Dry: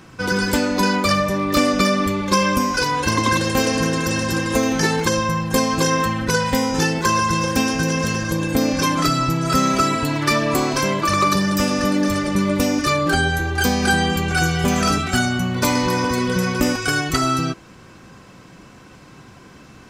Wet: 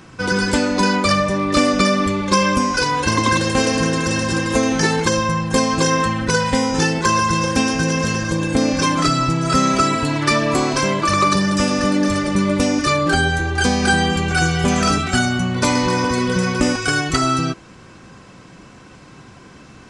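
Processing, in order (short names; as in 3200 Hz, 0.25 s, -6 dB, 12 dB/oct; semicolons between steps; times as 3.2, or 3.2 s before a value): downsampling 22050 Hz; gain +1.5 dB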